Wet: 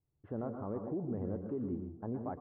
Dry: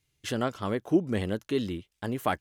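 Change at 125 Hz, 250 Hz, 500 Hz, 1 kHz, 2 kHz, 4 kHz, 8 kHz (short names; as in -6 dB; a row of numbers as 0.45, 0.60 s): -7.0 dB, -8.5 dB, -9.5 dB, -13.0 dB, under -25 dB, under -40 dB, n/a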